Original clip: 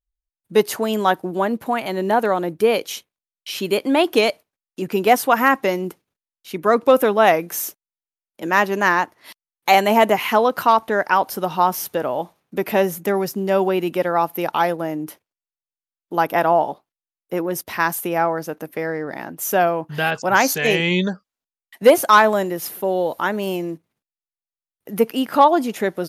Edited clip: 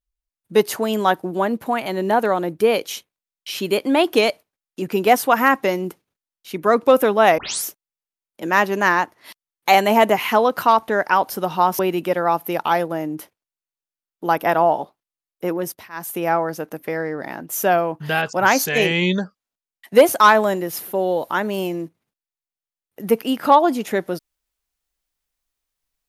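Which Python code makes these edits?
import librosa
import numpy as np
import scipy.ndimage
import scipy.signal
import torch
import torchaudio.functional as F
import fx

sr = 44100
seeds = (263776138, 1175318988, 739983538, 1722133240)

y = fx.edit(x, sr, fx.tape_start(start_s=7.38, length_s=0.27),
    fx.cut(start_s=11.79, length_s=1.89),
    fx.fade_down_up(start_s=17.39, length_s=0.81, db=-20.0, fade_s=0.39, curve='qsin'), tone=tone)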